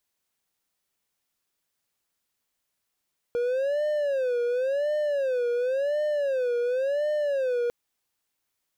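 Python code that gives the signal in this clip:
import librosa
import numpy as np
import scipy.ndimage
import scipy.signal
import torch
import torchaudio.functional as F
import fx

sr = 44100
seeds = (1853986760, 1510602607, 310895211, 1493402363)

y = fx.siren(sr, length_s=4.35, kind='wail', low_hz=478.0, high_hz=603.0, per_s=0.93, wave='triangle', level_db=-21.0)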